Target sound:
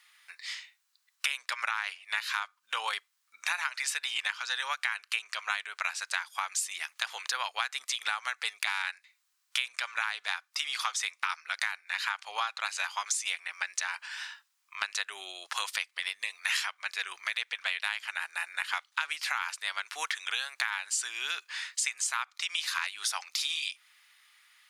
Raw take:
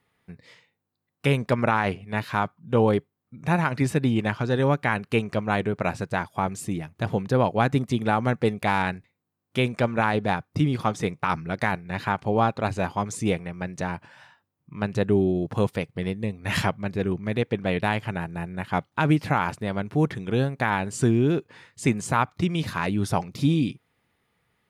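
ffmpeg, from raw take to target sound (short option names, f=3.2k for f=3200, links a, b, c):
-af "highpass=f=1.2k:w=0.5412,highpass=f=1.2k:w=1.3066,equalizer=f=5.9k:t=o:w=2.4:g=10.5,acompressor=threshold=-37dB:ratio=6,volume=8dB"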